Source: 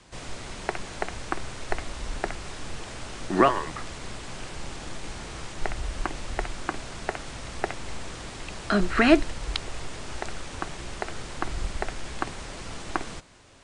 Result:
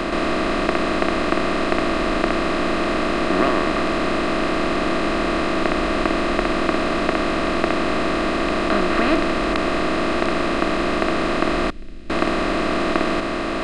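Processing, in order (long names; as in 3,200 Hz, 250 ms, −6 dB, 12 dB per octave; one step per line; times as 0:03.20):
compressor on every frequency bin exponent 0.2
0:11.70–0:12.10: guitar amp tone stack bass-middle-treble 10-0-1
level −5.5 dB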